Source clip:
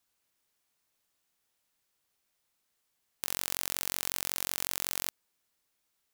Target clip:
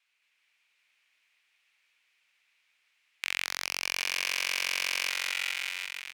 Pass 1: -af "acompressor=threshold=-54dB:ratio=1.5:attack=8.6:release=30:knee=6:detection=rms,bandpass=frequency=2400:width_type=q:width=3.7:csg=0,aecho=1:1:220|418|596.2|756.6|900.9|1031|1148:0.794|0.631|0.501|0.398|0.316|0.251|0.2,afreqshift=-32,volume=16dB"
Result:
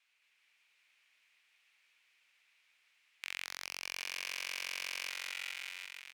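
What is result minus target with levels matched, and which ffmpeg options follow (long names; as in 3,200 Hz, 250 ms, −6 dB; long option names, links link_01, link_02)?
downward compressor: peak gain reduction +10 dB
-af "bandpass=frequency=2400:width_type=q:width=3.7:csg=0,aecho=1:1:220|418|596.2|756.6|900.9|1031|1148:0.794|0.631|0.501|0.398|0.316|0.251|0.2,afreqshift=-32,volume=16dB"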